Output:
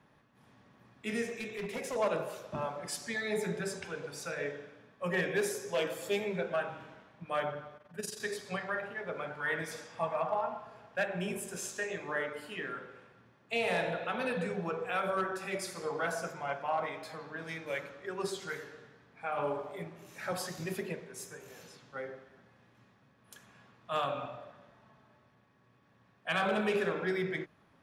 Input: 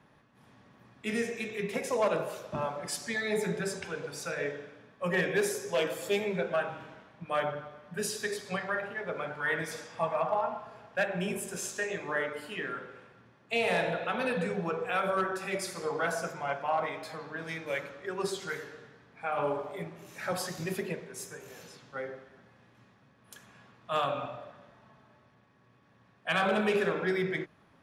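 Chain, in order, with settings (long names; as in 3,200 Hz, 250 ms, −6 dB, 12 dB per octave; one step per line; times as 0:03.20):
0:01.25–0:01.96: hard clipping −30.5 dBFS, distortion −26 dB
0:07.77–0:08.20: amplitude modulation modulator 22 Hz, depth 65%
level −3 dB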